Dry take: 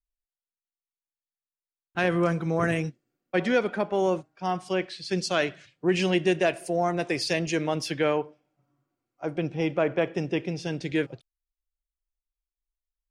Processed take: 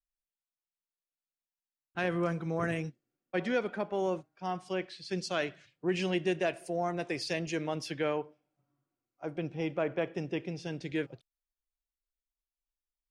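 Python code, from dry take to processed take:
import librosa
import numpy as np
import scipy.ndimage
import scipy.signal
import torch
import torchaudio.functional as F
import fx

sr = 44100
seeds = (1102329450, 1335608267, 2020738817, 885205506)

y = fx.high_shelf(x, sr, hz=8700.0, db=-4.5)
y = y * 10.0 ** (-7.0 / 20.0)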